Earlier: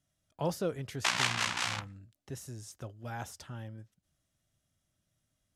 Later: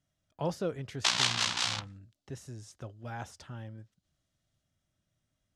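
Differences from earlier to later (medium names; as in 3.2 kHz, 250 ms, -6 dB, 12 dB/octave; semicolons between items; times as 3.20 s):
background: add resonant high shelf 2.9 kHz +6.5 dB, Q 1.5; master: add distance through air 52 m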